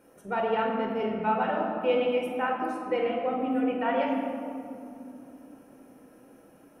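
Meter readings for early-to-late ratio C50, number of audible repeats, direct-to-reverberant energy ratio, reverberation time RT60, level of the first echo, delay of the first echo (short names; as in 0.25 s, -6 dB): 2.0 dB, none, -1.0 dB, 2.9 s, none, none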